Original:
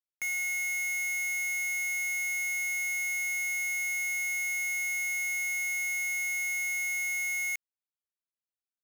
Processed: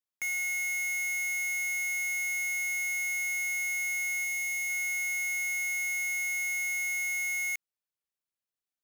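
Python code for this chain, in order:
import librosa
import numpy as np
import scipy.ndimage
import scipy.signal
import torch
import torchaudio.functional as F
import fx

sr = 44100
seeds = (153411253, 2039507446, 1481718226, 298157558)

y = fx.peak_eq(x, sr, hz=1500.0, db=-10.0, octaves=0.33, at=(4.24, 4.7))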